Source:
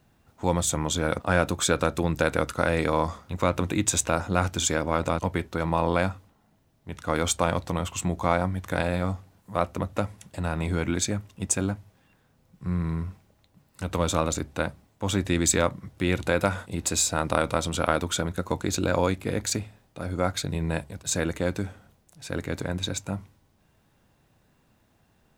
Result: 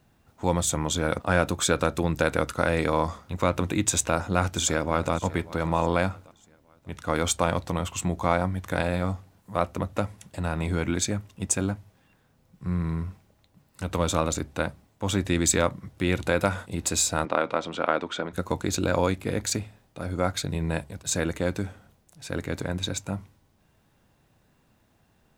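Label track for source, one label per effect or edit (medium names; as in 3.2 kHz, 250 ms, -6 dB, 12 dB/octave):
3.950000	5.130000	echo throw 590 ms, feedback 40%, level -18 dB
17.250000	18.330000	band-pass 260–3100 Hz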